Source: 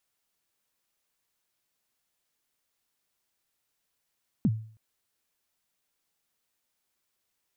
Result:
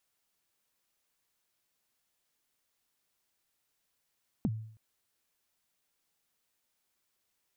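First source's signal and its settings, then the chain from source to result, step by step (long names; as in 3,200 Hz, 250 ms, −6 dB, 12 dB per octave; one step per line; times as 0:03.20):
synth kick length 0.32 s, from 260 Hz, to 110 Hz, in 45 ms, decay 0.48 s, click off, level −17.5 dB
downward compressor, threshold −30 dBFS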